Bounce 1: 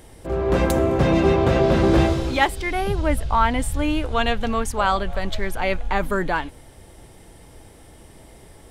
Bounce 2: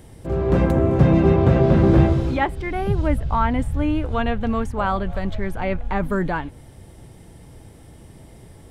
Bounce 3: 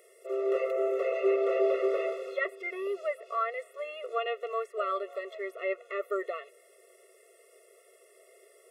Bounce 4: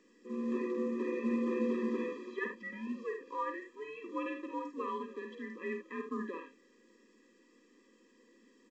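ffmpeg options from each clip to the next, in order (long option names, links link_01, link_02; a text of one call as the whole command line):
ffmpeg -i in.wav -filter_complex "[0:a]equalizer=frequency=130:width=0.6:gain=10,acrossover=split=2500[link_01][link_02];[link_02]acompressor=threshold=-45dB:ratio=5[link_03];[link_01][link_03]amix=inputs=2:normalize=0,volume=-3dB" out.wav
ffmpeg -i in.wav -filter_complex "[0:a]aexciter=amount=1.9:drive=2:freq=2200,acrossover=split=3600[link_01][link_02];[link_02]acompressor=threshold=-55dB:ratio=4:attack=1:release=60[link_03];[link_01][link_03]amix=inputs=2:normalize=0,afftfilt=real='re*eq(mod(floor(b*sr/1024/360),2),1)':imag='im*eq(mod(floor(b*sr/1024/360),2),1)':win_size=1024:overlap=0.75,volume=-5dB" out.wav
ffmpeg -i in.wav -af "afreqshift=-160,aecho=1:1:50|77:0.473|0.355,volume=-7.5dB" -ar 16000 -c:a pcm_mulaw out.wav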